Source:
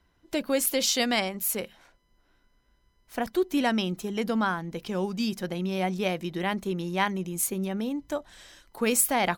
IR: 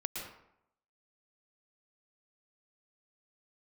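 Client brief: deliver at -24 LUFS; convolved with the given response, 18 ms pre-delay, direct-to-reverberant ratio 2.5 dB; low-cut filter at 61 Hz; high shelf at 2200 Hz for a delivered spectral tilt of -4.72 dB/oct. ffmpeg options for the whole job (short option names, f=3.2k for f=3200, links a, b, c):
-filter_complex "[0:a]highpass=61,highshelf=f=2.2k:g=-6,asplit=2[a][b];[1:a]atrim=start_sample=2205,adelay=18[c];[b][c]afir=irnorm=-1:irlink=0,volume=-4dB[d];[a][d]amix=inputs=2:normalize=0,volume=3.5dB"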